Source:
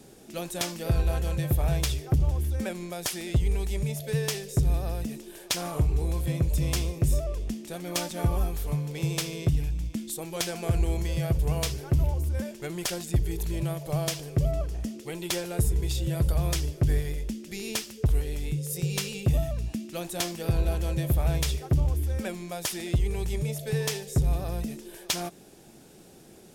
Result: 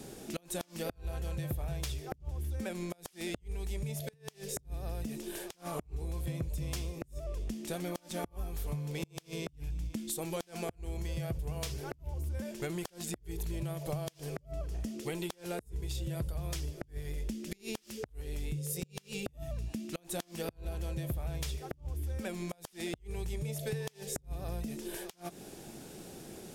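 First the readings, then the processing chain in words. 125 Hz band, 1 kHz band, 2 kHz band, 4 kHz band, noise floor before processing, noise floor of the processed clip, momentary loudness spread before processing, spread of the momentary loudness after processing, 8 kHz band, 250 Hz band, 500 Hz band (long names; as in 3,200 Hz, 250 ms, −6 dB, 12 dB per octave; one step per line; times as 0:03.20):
−12.0 dB, −7.5 dB, −8.0 dB, −11.0 dB, −51 dBFS, −64 dBFS, 8 LU, 5 LU, −9.0 dB, −7.5 dB, −7.0 dB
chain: downward compressor 12 to 1, threshold −37 dBFS, peak gain reduction 18 dB
gate with flip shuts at −28 dBFS, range −28 dB
level +4 dB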